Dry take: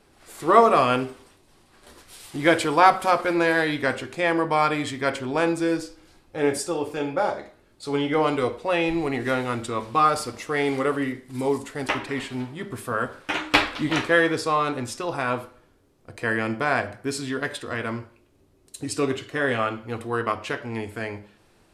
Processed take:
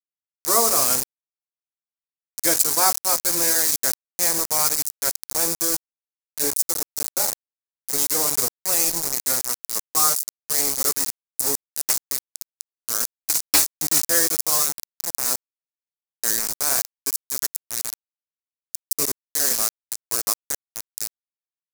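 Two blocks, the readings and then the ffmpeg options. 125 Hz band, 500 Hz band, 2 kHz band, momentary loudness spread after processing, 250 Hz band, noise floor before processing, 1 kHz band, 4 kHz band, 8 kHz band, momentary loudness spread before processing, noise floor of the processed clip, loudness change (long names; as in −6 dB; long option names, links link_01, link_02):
−11.5 dB, −9.0 dB, −8.0 dB, 13 LU, −11.0 dB, −59 dBFS, −8.0 dB, +5.5 dB, +20.0 dB, 12 LU, below −85 dBFS, +3.5 dB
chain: -af "aeval=exprs='val(0)*gte(abs(val(0)),0.0841)':channel_layout=same,aexciter=amount=14.9:drive=4.2:freq=4700,volume=-7.5dB"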